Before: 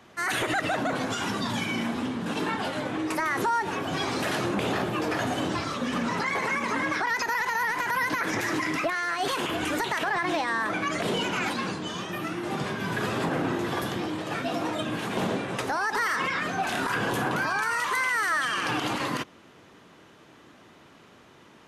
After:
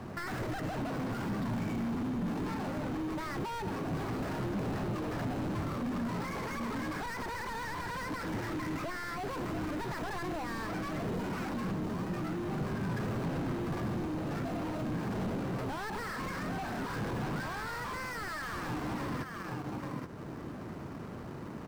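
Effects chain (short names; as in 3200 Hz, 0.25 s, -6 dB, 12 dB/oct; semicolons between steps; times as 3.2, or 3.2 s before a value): median filter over 15 samples; on a send: echo 0.826 s -13.5 dB; on the sum: hard clip -33.5 dBFS, distortion -7 dB; in parallel at -7 dB: sample-and-hold 13×; on the sum: compressor, threshold -44 dBFS, peak gain reduction 11.5 dB; tone controls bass +9 dB, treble -3 dB; gain +5.5 dB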